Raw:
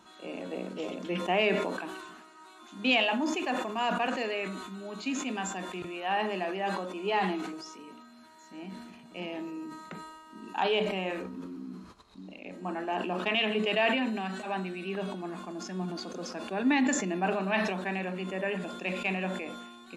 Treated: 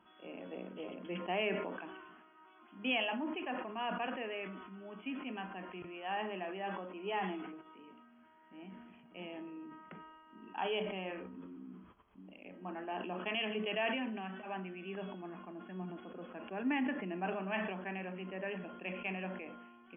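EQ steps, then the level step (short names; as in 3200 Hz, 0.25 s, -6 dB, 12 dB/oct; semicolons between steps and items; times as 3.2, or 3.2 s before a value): brick-wall FIR low-pass 3400 Hz; -8.5 dB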